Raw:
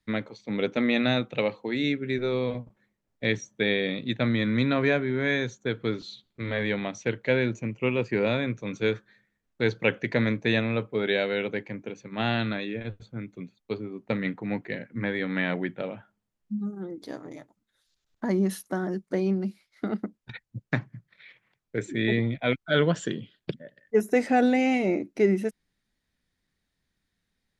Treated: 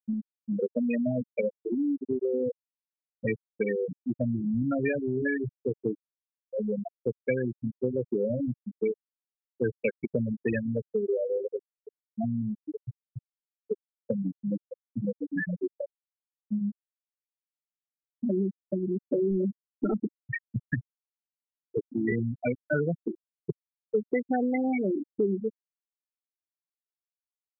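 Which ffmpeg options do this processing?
ffmpeg -i in.wav -filter_complex "[0:a]asettb=1/sr,asplit=3[link_01][link_02][link_03];[link_01]atrim=end=15.054[link_04];[link_02]atrim=start=15.05:end=18.37,asetpts=PTS-STARTPTS,afade=type=in:duration=0.004:curve=qsin,afade=type=out:start_time=3.316:duration=0.004:curve=qsin,asplit=2[link_05][link_06];[link_06]adelay=24,volume=-11.5dB[link_07];[link_05][link_07]amix=inputs=2:normalize=0,atrim=end_sample=146412[link_08];[link_03]atrim=start=18.366[link_09];[link_04][link_08]acrossfade=duration=0.004:curve1=hsin:curve2=qsin[link_10];[link_10][link_09]acrossfade=duration=0.004:curve1=qsin:curve2=hsin,asettb=1/sr,asplit=3[link_11][link_12][link_13];[link_11]atrim=end=19.004[link_14];[link_12]atrim=start=19:end=20.68,asetpts=PTS-STARTPTS,afade=type=in:duration=0.004:curve=qsin,afade=type=out:start_time=1.676:duration=0.004:curve=qsin,asplit=2[link_15][link_16];[link_16]highpass=frequency=720:poles=1,volume=28dB,asoftclip=type=tanh:threshold=-15dB[link_17];[link_15][link_17]amix=inputs=2:normalize=0,lowpass=frequency=2600:poles=1,volume=-6dB[link_18];[link_13]atrim=start=20.676[link_19];[link_14][link_18]acrossfade=duration=0.004:curve1=hsin:curve2=qsin[link_20];[link_20][link_19]acrossfade=duration=0.004:curve1=qsin:curve2=hsin,afftfilt=real='re*gte(hypot(re,im),0.251)':imag='im*gte(hypot(re,im),0.251)':win_size=1024:overlap=0.75,acrossover=split=500|1800[link_21][link_22][link_23];[link_21]acompressor=threshold=-34dB:ratio=4[link_24];[link_22]acompressor=threshold=-42dB:ratio=4[link_25];[link_23]acompressor=threshold=-43dB:ratio=4[link_26];[link_24][link_25][link_26]amix=inputs=3:normalize=0,volume=6dB" out.wav

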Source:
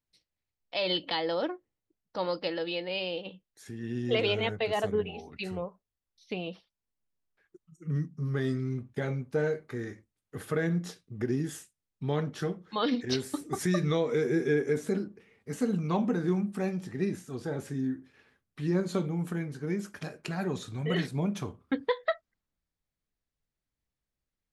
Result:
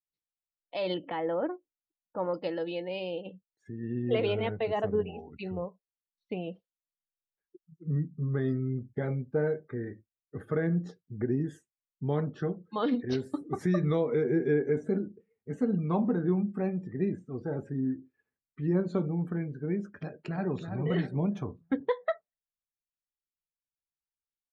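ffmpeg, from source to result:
ffmpeg -i in.wav -filter_complex "[0:a]asettb=1/sr,asplit=3[link_01][link_02][link_03];[link_01]atrim=end=0.944[link_04];[link_02]atrim=start=0.94:end=2.34,asetpts=PTS-STARTPTS,afade=type=in:duration=0.004:curve=qsin,afade=type=out:start_time=1.396:duration=0.004:curve=qsin,lowpass=frequency=2500:width=0.5412,lowpass=frequency=2500:width=1.3066[link_05];[link_03]atrim=start=2.336[link_06];[link_04][link_05]acrossfade=duration=0.004:curve1=hsin:curve2=qsin[link_07];[link_07][link_06]acrossfade=duration=0.004:curve1=qsin:curve2=hsin,asplit=2[link_08][link_09];[link_09]afade=type=in:start_time=19.97:duration=0.01,afade=type=out:start_time=20.61:duration=0.01,aecho=0:1:330|660|990|1320|1650:0.473151|0.189261|0.0757042|0.0302817|0.0121127[link_10];[link_08][link_10]amix=inputs=2:normalize=0,afftdn=noise_reduction=22:noise_floor=-48,lowpass=frequency=1100:poles=1,volume=1dB" out.wav

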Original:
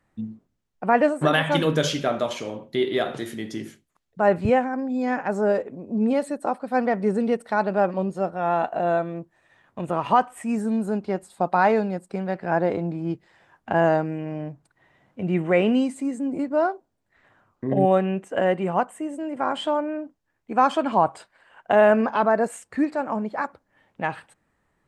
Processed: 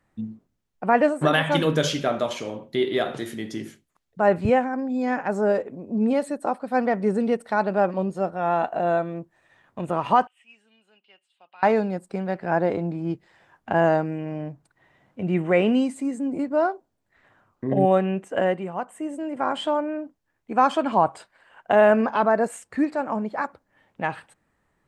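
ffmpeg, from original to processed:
ffmpeg -i in.wav -filter_complex "[0:a]asettb=1/sr,asplit=3[link_01][link_02][link_03];[link_01]atrim=end=10.274[link_04];[link_02]atrim=start=10.27:end=11.63,asetpts=PTS-STARTPTS,afade=type=in:duration=0.004:curve=qsin,afade=type=out:start_time=1.356:duration=0.004:curve=qsin,bandpass=frequency=2900:width_type=q:width=9.6[link_05];[link_03]atrim=start=11.626[link_06];[link_04][link_05]acrossfade=duration=0.004:curve1=hsin:curve2=qsin[link_07];[link_07][link_06]acrossfade=duration=0.004:curve1=qsin:curve2=hsin,asplit=3[link_08][link_09][link_10];[link_08]atrim=end=18.7,asetpts=PTS-STARTPTS,afade=type=out:start_time=18.42:duration=0.28:silence=0.398107[link_11];[link_09]atrim=start=18.7:end=18.78,asetpts=PTS-STARTPTS,volume=-8dB[link_12];[link_10]atrim=start=18.78,asetpts=PTS-STARTPTS,afade=type=in:duration=0.28:silence=0.398107[link_13];[link_11][link_12][link_13]concat=n=3:v=0:a=1" out.wav

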